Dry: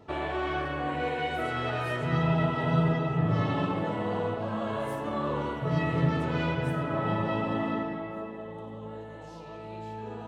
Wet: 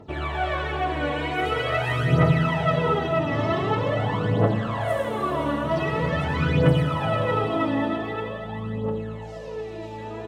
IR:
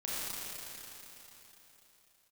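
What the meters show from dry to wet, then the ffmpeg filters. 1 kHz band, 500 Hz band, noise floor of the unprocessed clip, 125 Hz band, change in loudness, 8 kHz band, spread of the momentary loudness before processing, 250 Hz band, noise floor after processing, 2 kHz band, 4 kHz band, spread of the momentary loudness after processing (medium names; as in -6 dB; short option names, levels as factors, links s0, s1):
+5.5 dB, +6.5 dB, -43 dBFS, +5.5 dB, +5.5 dB, no reading, 15 LU, +4.0 dB, -35 dBFS, +6.0 dB, +7.5 dB, 12 LU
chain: -filter_complex "[0:a]aecho=1:1:82|108:0.501|0.562,asplit=2[s0][s1];[1:a]atrim=start_sample=2205,adelay=128[s2];[s1][s2]afir=irnorm=-1:irlink=0,volume=0.473[s3];[s0][s3]amix=inputs=2:normalize=0,aphaser=in_gain=1:out_gain=1:delay=3.6:decay=0.64:speed=0.45:type=triangular"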